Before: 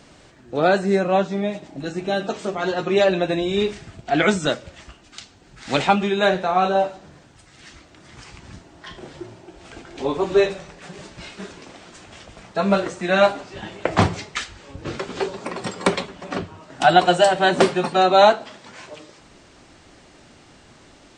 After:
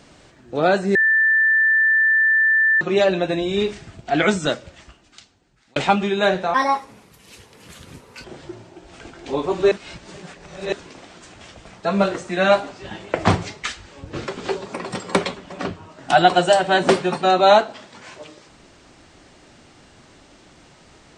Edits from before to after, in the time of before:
0.95–2.81 s: bleep 1.77 kHz -13 dBFS
4.51–5.76 s: fade out
6.54–8.96 s: speed 142%
10.43–11.44 s: reverse

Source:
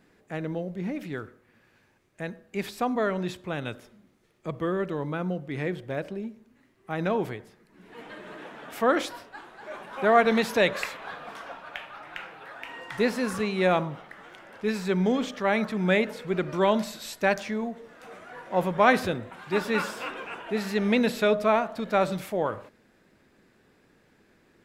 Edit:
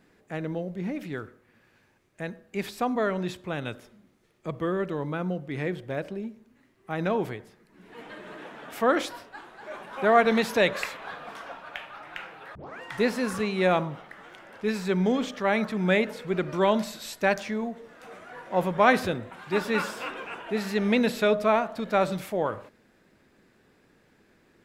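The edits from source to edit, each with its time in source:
12.55 s: tape start 0.26 s

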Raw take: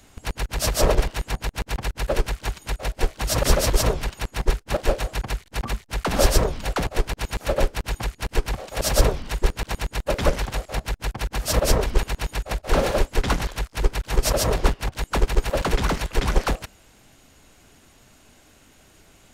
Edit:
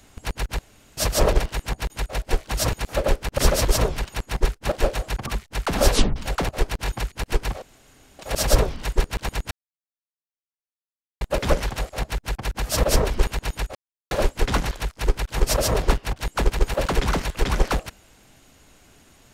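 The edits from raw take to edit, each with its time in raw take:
0.59 s: insert room tone 0.38 s
1.52–2.60 s: delete
5.31–5.64 s: delete
6.29 s: tape stop 0.25 s
7.24–7.89 s: move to 3.42 s
8.65 s: insert room tone 0.57 s
9.97 s: insert silence 1.70 s
12.51–12.87 s: mute

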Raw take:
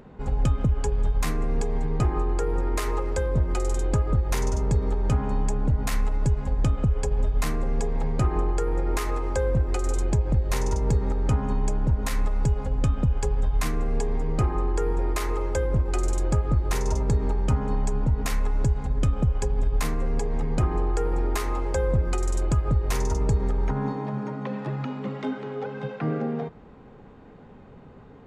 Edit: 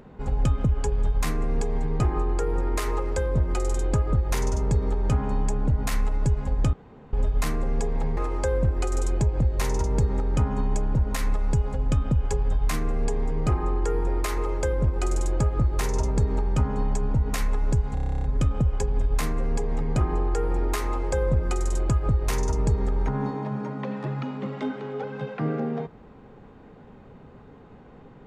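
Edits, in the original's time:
6.73–7.13 s: room tone
8.17–9.09 s: delete
18.86 s: stutter 0.03 s, 11 plays

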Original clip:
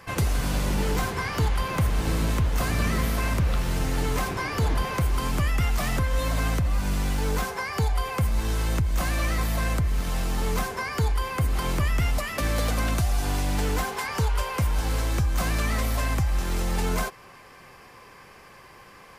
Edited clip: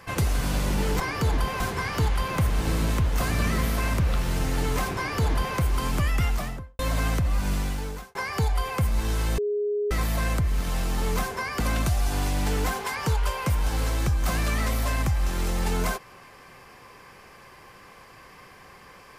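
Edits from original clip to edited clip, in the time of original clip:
4.37–4.97 s: copy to 1.00 s
5.62–6.19 s: studio fade out
6.93–7.55 s: fade out
8.78–9.31 s: bleep 414 Hz -23 dBFS
11.00–12.72 s: delete

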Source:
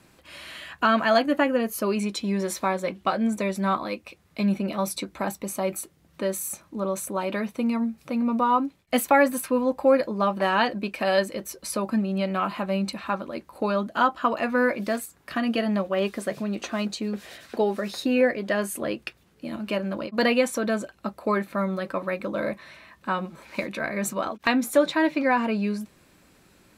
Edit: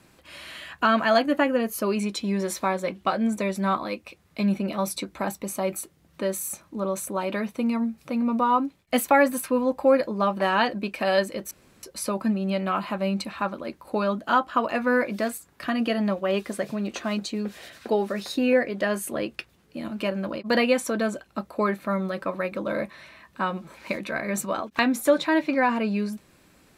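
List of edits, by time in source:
11.51 s: insert room tone 0.32 s

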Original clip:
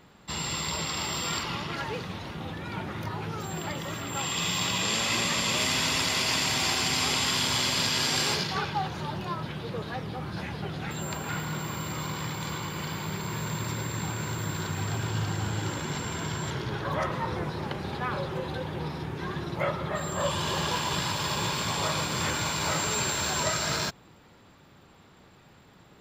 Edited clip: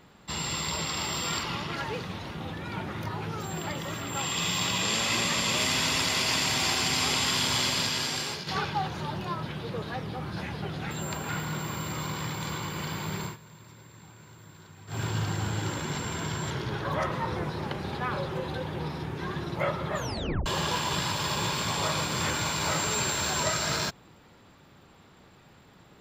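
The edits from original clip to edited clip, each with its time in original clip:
7.64–8.47 s: fade out, to -10 dB
13.24–15.00 s: dip -18.5 dB, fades 0.13 s
19.95 s: tape stop 0.51 s

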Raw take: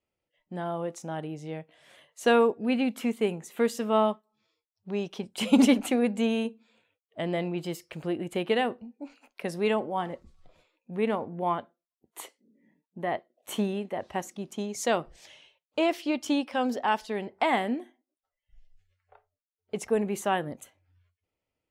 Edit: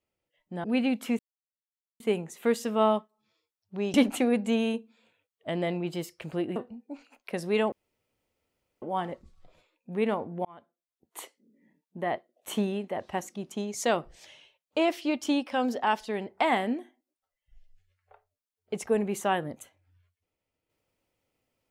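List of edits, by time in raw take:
0.64–2.59 s: delete
3.14 s: insert silence 0.81 s
5.08–5.65 s: delete
8.27–8.67 s: delete
9.83 s: insert room tone 1.10 s
11.46–12.21 s: fade in

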